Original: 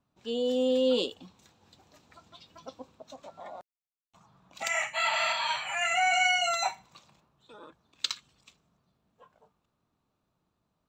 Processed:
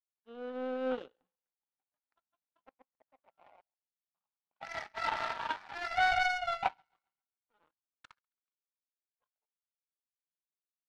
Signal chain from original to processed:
loudspeaker in its box 250–2,000 Hz, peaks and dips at 370 Hz −6 dB, 840 Hz +7 dB, 1,500 Hz +7 dB
feedback echo with a high-pass in the loop 136 ms, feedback 66%, high-pass 650 Hz, level −18 dB
power curve on the samples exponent 2

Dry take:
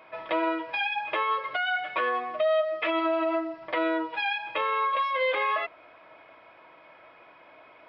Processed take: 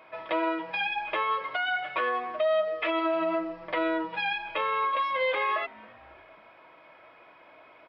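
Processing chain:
echo with shifted repeats 272 ms, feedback 53%, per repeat −150 Hz, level −24 dB
level −1 dB

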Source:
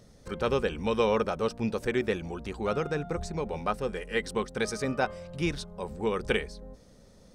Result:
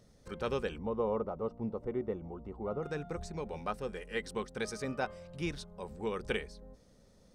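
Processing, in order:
0:00.78–0:02.83: Savitzky-Golay smoothing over 65 samples
level −7 dB

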